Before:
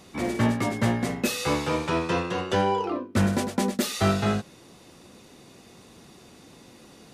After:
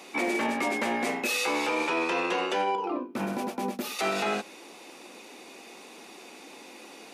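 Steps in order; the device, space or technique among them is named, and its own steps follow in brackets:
laptop speaker (high-pass filter 270 Hz 24 dB per octave; parametric band 840 Hz +5.5 dB 0.33 octaves; parametric band 2,400 Hz +9.5 dB 0.34 octaves; brickwall limiter −22.5 dBFS, peak gain reduction 10.5 dB)
0:02.75–0:03.99: graphic EQ with 10 bands 125 Hz +7 dB, 500 Hz −5 dB, 2,000 Hz −9 dB, 4,000 Hz −5 dB, 8,000 Hz −10 dB
level +3.5 dB

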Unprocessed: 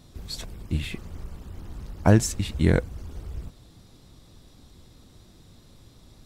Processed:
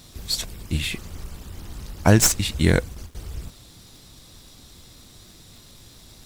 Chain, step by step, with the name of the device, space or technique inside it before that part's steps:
0:02.17–0:03.15: noise gate with hold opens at −28 dBFS
high-shelf EQ 2,200 Hz +11.5 dB
record under a worn stylus (stylus tracing distortion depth 0.031 ms; surface crackle 120 per second −43 dBFS; pink noise bed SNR 36 dB)
level +1.5 dB

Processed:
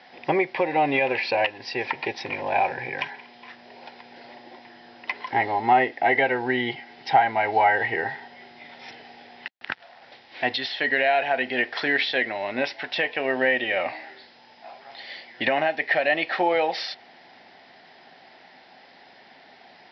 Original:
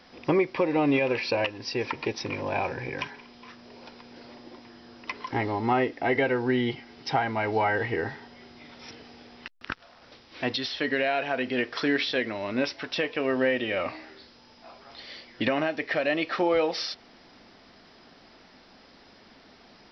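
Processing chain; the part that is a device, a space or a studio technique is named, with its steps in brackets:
kitchen radio (loudspeaker in its box 190–4,500 Hz, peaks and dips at 210 Hz −7 dB, 300 Hz −8 dB, 460 Hz −5 dB, 780 Hz +8 dB, 1,200 Hz −9 dB, 1,900 Hz +6 dB)
level +3.5 dB

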